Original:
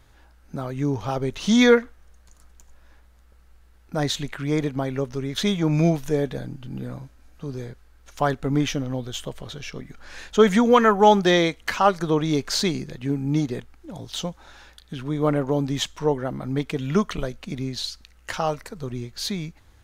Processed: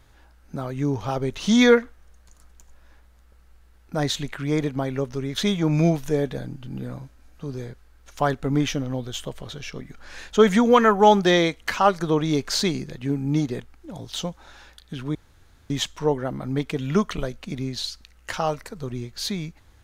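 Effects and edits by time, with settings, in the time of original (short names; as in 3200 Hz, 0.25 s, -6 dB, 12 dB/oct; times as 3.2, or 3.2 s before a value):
15.15–15.7 room tone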